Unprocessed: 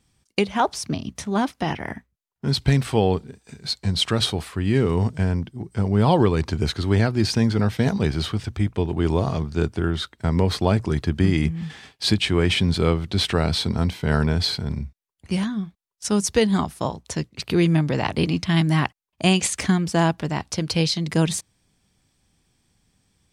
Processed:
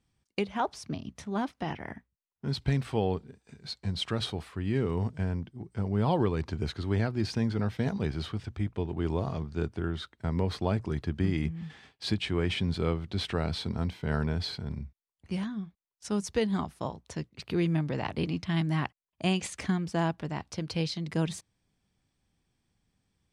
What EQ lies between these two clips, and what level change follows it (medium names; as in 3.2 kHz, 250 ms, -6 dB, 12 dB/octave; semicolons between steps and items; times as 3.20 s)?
treble shelf 5.5 kHz -9.5 dB; -9.0 dB